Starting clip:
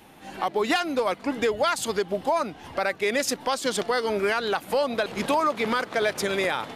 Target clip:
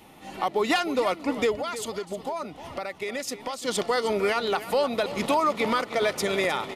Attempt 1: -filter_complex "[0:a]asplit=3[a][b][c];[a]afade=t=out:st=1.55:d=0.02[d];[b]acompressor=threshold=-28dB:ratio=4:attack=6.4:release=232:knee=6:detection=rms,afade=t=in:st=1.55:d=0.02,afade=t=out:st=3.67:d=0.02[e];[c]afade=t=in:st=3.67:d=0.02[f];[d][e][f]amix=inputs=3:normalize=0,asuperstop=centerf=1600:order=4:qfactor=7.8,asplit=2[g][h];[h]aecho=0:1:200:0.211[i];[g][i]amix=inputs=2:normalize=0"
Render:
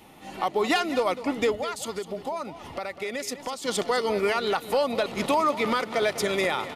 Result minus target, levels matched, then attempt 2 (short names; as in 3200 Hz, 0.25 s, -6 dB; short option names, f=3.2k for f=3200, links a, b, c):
echo 0.109 s early
-filter_complex "[0:a]asplit=3[a][b][c];[a]afade=t=out:st=1.55:d=0.02[d];[b]acompressor=threshold=-28dB:ratio=4:attack=6.4:release=232:knee=6:detection=rms,afade=t=in:st=1.55:d=0.02,afade=t=out:st=3.67:d=0.02[e];[c]afade=t=in:st=3.67:d=0.02[f];[d][e][f]amix=inputs=3:normalize=0,asuperstop=centerf=1600:order=4:qfactor=7.8,asplit=2[g][h];[h]aecho=0:1:309:0.211[i];[g][i]amix=inputs=2:normalize=0"